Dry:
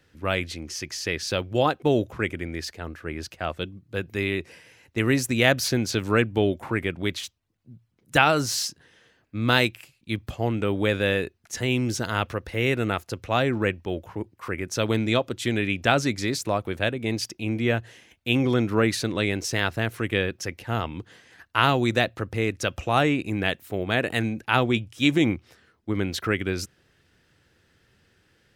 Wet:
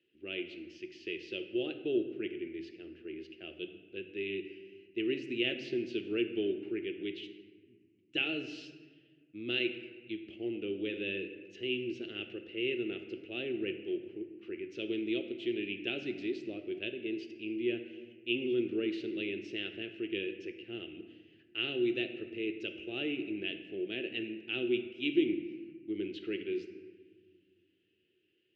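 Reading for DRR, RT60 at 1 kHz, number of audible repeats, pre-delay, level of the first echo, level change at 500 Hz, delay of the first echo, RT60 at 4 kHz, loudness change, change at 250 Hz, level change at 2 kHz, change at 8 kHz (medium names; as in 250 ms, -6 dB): 7.0 dB, 1.2 s, no echo, 5 ms, no echo, -9.5 dB, no echo, 0.95 s, -11.5 dB, -9.0 dB, -13.0 dB, under -30 dB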